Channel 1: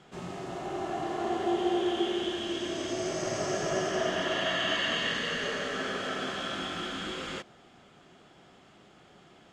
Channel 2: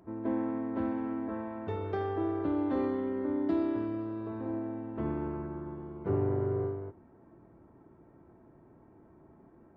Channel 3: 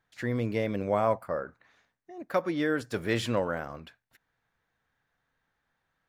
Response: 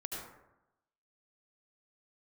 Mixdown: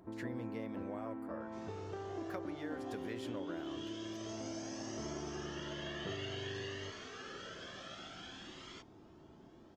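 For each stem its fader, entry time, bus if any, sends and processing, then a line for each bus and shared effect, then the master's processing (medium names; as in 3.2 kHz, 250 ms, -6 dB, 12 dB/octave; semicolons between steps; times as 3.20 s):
-11.5 dB, 1.40 s, bus A, no send, resonant low-pass 5.8 kHz, resonance Q 2.4; Shepard-style flanger rising 0.55 Hz
-1.0 dB, 0.00 s, no bus, no send, compression 6:1, threshold -41 dBFS, peak gain reduction 15 dB
-8.0 dB, 0.00 s, bus A, no send, none
bus A: 0.0 dB, compression 6:1, threshold -42 dBFS, peak gain reduction 13 dB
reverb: none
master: none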